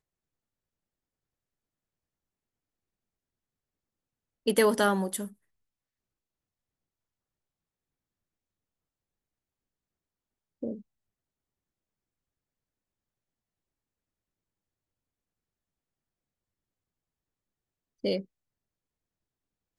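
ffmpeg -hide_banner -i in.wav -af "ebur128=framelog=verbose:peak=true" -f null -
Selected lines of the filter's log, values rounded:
Integrated loudness:
  I:         -28.7 LUFS
  Threshold: -39.9 LUFS
Loudness range:
  LRA:        16.5 LU
  Threshold: -55.5 LUFS
  LRA low:   -47.7 LUFS
  LRA high:  -31.2 LUFS
True peak:
  Peak:      -11.0 dBFS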